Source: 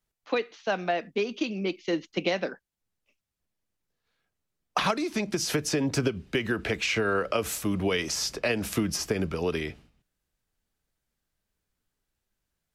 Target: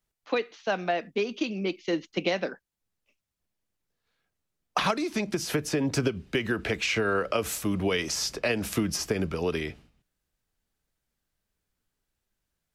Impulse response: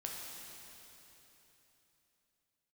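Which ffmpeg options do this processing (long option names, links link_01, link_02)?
-filter_complex "[0:a]asettb=1/sr,asplit=3[link_01][link_02][link_03];[link_01]atrim=end=5.344[link_04];[link_02]atrim=start=5.34:end=5.85,asetpts=PTS-STARTPTS,afade=type=in:duration=0.004:curve=qsin,afade=type=out:start_time=0.506:duration=0.004:curve=qsin,equalizer=frequency=5700:width_type=o:width=1.4:gain=-5[link_05];[link_03]atrim=start=5.846[link_06];[link_04][link_05]acrossfade=duration=0.004:curve1=hsin:curve2=qsin[link_07];[link_07][link_06]acrossfade=duration=0.004:curve1=qsin:curve2=hsin"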